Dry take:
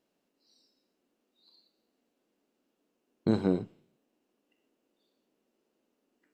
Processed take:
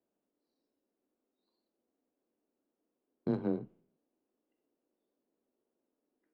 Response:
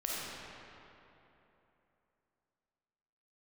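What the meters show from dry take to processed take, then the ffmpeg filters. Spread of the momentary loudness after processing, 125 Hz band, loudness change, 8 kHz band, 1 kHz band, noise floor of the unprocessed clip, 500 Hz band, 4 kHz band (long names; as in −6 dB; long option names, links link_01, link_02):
12 LU, −7.5 dB, −6.0 dB, can't be measured, −6.5 dB, −80 dBFS, −5.5 dB, below −15 dB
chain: -af "afreqshift=16,adynamicsmooth=sensitivity=1.5:basefreq=1600,volume=-6dB"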